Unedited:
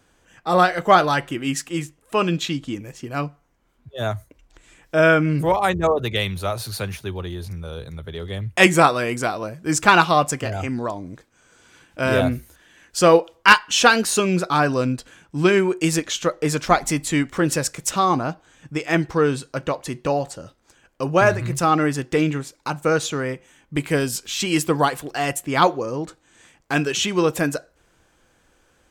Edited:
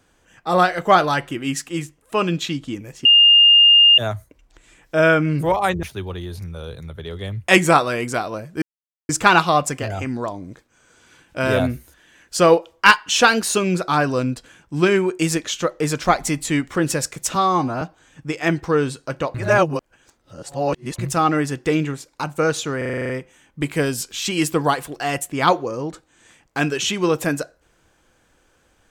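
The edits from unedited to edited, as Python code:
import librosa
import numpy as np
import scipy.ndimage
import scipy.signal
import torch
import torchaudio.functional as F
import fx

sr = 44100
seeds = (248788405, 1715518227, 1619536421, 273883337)

y = fx.edit(x, sr, fx.bleep(start_s=3.05, length_s=0.93, hz=2820.0, db=-7.5),
    fx.cut(start_s=5.83, length_s=1.09),
    fx.insert_silence(at_s=9.71, length_s=0.47),
    fx.stretch_span(start_s=17.97, length_s=0.31, factor=1.5),
    fx.reverse_span(start_s=19.81, length_s=1.64),
    fx.stutter(start_s=23.24, slice_s=0.04, count=9), tone=tone)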